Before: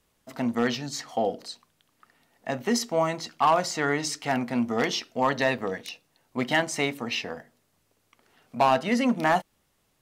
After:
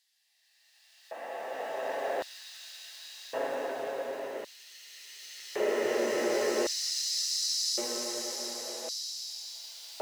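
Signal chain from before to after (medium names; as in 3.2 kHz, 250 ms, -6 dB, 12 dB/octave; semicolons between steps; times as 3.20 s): cycle switcher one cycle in 2, muted; Paulstretch 18×, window 0.25 s, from 2.36 s; LFO high-pass square 0.45 Hz 500–4300 Hz; trim -3 dB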